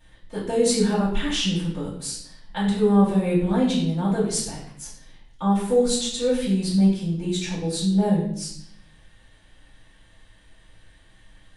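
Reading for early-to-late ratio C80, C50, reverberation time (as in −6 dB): 7.0 dB, 4.0 dB, 0.70 s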